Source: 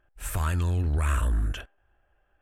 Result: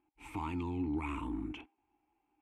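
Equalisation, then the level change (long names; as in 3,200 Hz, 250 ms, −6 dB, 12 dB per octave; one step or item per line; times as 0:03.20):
formant filter u
+9.0 dB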